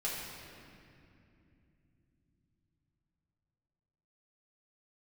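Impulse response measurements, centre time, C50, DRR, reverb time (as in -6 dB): 125 ms, -0.5 dB, -6.5 dB, 2.7 s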